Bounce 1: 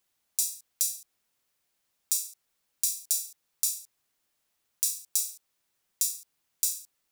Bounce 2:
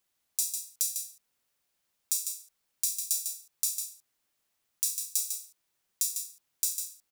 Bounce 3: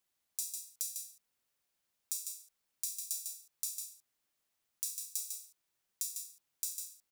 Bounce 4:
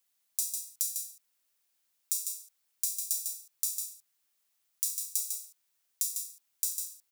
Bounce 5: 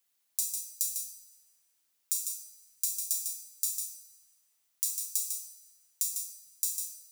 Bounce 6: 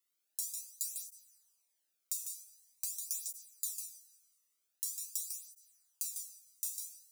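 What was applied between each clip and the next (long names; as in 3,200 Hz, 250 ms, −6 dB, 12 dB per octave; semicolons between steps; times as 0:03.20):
single-tap delay 150 ms −7 dB; level −2 dB
downward compressor 1.5 to 1, threshold −36 dBFS, peak gain reduction 5 dB; level −4.5 dB
spectral tilt +2 dB per octave
feedback delay network reverb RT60 2.1 s, low-frequency decay 1.55×, high-frequency decay 0.65×, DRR 7.5 dB
through-zero flanger with one copy inverted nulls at 0.45 Hz, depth 1.3 ms; level −4 dB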